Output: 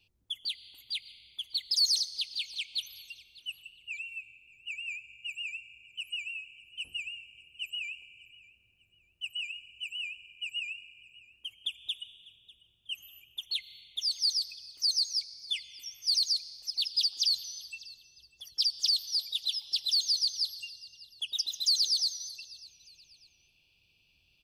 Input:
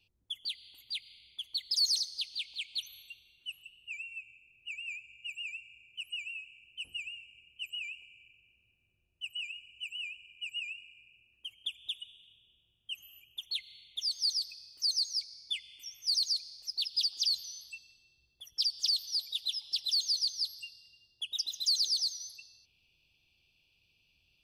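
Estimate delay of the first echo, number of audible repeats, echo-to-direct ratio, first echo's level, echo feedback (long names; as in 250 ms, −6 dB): 596 ms, 2, −20.5 dB, −21.0 dB, 32%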